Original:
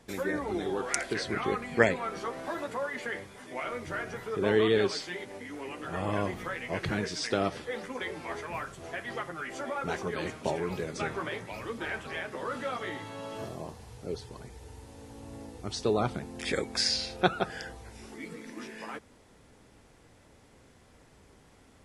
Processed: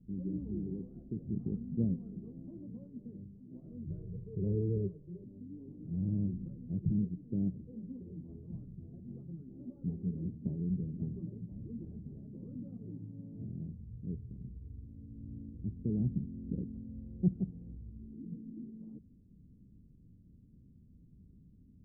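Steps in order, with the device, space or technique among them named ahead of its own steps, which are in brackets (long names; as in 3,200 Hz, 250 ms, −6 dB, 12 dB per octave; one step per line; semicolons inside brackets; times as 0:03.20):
0:03.90–0:05.24: comb filter 2 ms, depth 95%
the neighbour's flat through the wall (low-pass filter 240 Hz 24 dB per octave; parametric band 180 Hz +5 dB 0.51 octaves)
level +1.5 dB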